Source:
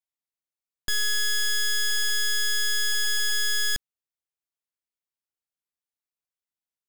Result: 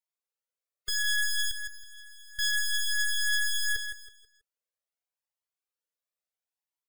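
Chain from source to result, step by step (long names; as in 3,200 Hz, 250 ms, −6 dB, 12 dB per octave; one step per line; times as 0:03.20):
gate on every frequency bin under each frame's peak −30 dB strong
0:01.51–0:02.39: downward expander −12 dBFS
low shelf with overshoot 370 Hz −9 dB, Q 3
on a send: repeating echo 162 ms, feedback 31%, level −8.5 dB
on the sum: flanger whose copies keep moving one way rising 0.74 Hz
level +1.5 dB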